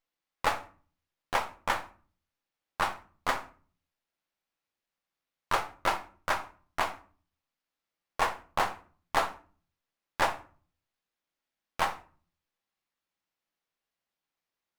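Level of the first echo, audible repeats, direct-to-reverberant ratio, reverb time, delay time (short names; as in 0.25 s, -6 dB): none, none, 7.0 dB, 0.40 s, none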